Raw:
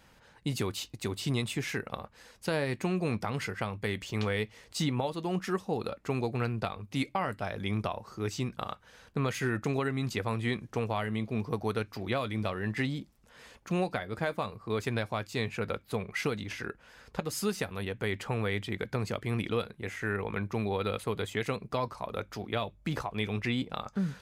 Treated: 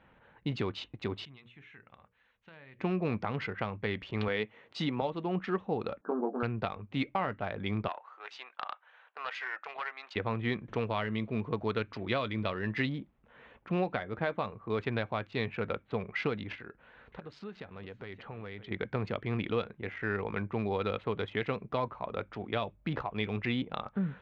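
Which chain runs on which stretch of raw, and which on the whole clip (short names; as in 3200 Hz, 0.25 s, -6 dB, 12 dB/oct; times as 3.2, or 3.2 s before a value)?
1.25–2.79 passive tone stack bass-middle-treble 5-5-5 + notches 60/120/180/240/300/360/420/480/540/600 Hz + compressor 2:1, threshold -50 dBFS
4.28–5.02 HPF 160 Hz + high shelf 8600 Hz +4.5 dB
6.01–6.43 brick-wall FIR band-pass 190–1700 Hz + doubler 20 ms -4.5 dB
7.88–10.16 HPF 720 Hz 24 dB/oct + Doppler distortion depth 0.12 ms
10.68–12.89 high shelf 4600 Hz +10.5 dB + notch 770 Hz, Q 9.6 + upward compressor, threshold -36 dBFS
16.55–18.71 compressor 2:1, threshold -47 dBFS + bell 4300 Hz +7.5 dB 0.34 oct + echo 0.573 s -13 dB
whole clip: Wiener smoothing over 9 samples; LPF 4000 Hz 24 dB/oct; low shelf 88 Hz -6 dB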